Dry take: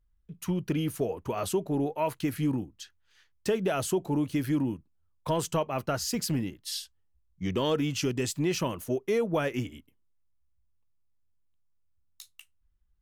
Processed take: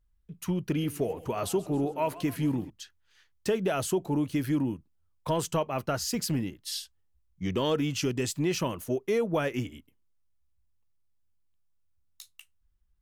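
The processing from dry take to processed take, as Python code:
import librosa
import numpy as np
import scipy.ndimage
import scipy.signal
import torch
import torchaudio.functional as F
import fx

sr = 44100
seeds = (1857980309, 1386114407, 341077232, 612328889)

y = fx.echo_warbled(x, sr, ms=139, feedback_pct=57, rate_hz=2.8, cents=195, wet_db=-18.0, at=(0.62, 2.7))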